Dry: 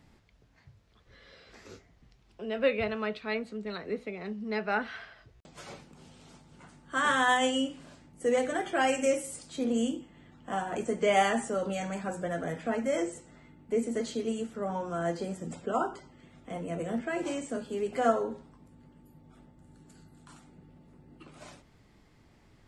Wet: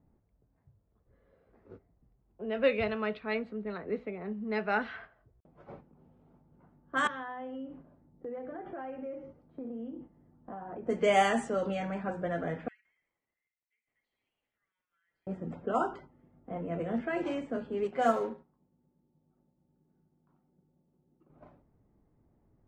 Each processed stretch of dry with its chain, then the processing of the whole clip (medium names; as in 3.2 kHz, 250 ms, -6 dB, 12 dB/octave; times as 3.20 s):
7.07–10.87 s: steep low-pass 6.4 kHz 96 dB/octave + treble shelf 2.7 kHz -10.5 dB + compression 5:1, threshold -38 dBFS
12.68–15.27 s: elliptic high-pass 2 kHz, stop band 60 dB + compression 8:1, threshold -52 dBFS + bit-crushed delay 167 ms, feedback 35%, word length 10-bit, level -5 dB
17.84–21.30 s: companding laws mixed up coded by A + high-pass 110 Hz 6 dB/octave + comb 5.4 ms, depth 35%
whole clip: level-controlled noise filter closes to 720 Hz, open at -23 dBFS; gate -49 dBFS, range -7 dB; treble shelf 5.3 kHz -4.5 dB